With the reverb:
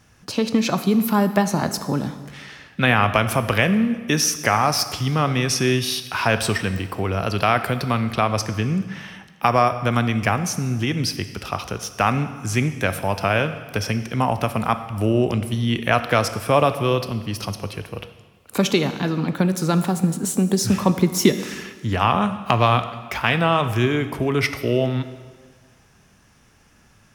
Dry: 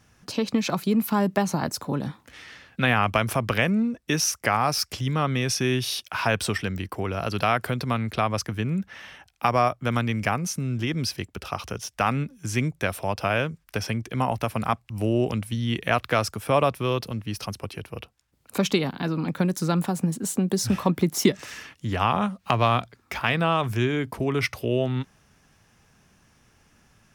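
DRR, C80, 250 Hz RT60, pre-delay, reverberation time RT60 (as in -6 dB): 10.0 dB, 13.0 dB, 1.5 s, 7 ms, 1.5 s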